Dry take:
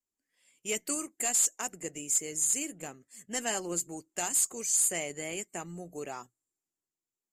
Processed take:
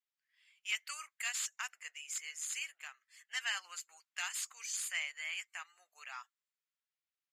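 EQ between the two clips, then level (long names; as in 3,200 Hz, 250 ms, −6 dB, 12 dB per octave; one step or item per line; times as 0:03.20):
high-pass filter 1,200 Hz 24 dB per octave
high-frequency loss of the air 320 metres
spectral tilt +4 dB per octave
+1.5 dB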